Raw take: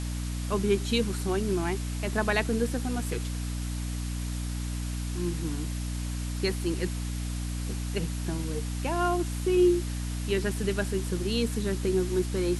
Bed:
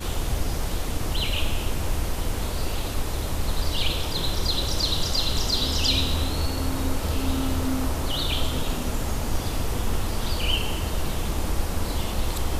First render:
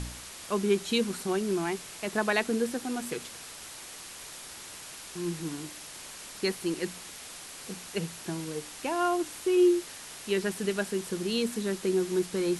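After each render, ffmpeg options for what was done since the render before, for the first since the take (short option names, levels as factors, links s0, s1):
-af "bandreject=f=60:t=h:w=4,bandreject=f=120:t=h:w=4,bandreject=f=180:t=h:w=4,bandreject=f=240:t=h:w=4,bandreject=f=300:t=h:w=4"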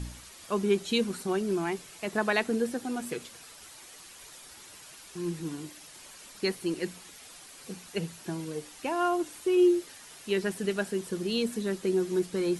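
-af "afftdn=nr=8:nf=-45"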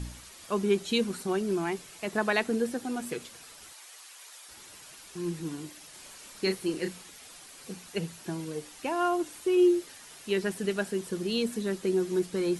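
-filter_complex "[0:a]asettb=1/sr,asplit=3[s0][s1][s2];[s0]atrim=end=3.734[s3];[s1]atrim=start=3.73:end=4.49,asetpts=PTS-STARTPTS,afade=t=in:d=0.004:c=qsin,afade=t=out:st=0.756:d=0.004:c=qsin,highpass=690[s4];[s2]atrim=start=4.486[s5];[s3][s4]acrossfade=d=0.004:c1=hsin:c2=qsin[s6];[s6][s5]acrossfade=d=0.004:c1=qsin:c2=hsin,asettb=1/sr,asplit=3[s7][s8][s9];[s7]atrim=end=5.904[s10];[s8]atrim=start=5.9:end=7.02,asetpts=PTS-STARTPTS,afade=t=in:d=0.004:c=qsin,afade=t=out:st=1.116:d=0.004:c=qsin,asplit=2[s11][s12];[s12]adelay=32,volume=0.473[s13];[s11][s13]amix=inputs=2:normalize=0,atrim=end_sample=49392[s14];[s9]atrim=start=7.016[s15];[s10][s14]acrossfade=d=0.004:c1=hsin:c2=qsin[s16];[s16][s15]acrossfade=d=0.004:c1=qsin:c2=hsin"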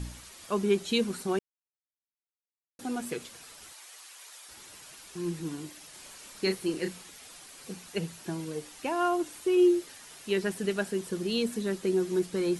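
-filter_complex "[0:a]asplit=3[s0][s1][s2];[s0]atrim=end=1.39,asetpts=PTS-STARTPTS,afade=t=out:st=1.386:d=0.004:c=hsin[s3];[s1]atrim=start=1.39:end=2.79,asetpts=PTS-STARTPTS,volume=0[s4];[s2]atrim=start=2.79,asetpts=PTS-STARTPTS,afade=t=in:d=0.004:c=hsin[s5];[s3][s4][s5]concat=n=3:v=0:a=1"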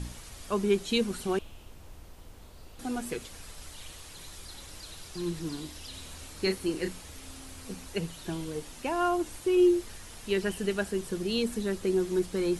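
-filter_complex "[1:a]volume=0.0708[s0];[0:a][s0]amix=inputs=2:normalize=0"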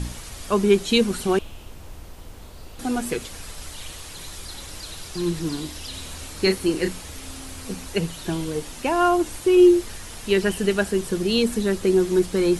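-af "volume=2.66"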